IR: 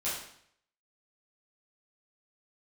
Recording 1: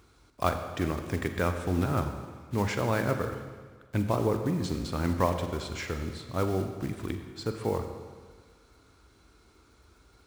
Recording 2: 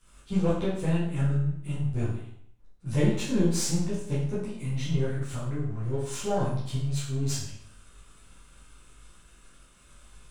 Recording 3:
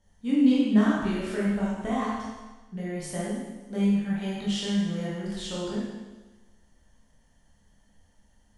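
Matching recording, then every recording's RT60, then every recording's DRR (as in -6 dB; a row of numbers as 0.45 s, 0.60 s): 2; 1.6 s, 0.65 s, 1.2 s; 6.5 dB, -11.0 dB, -7.5 dB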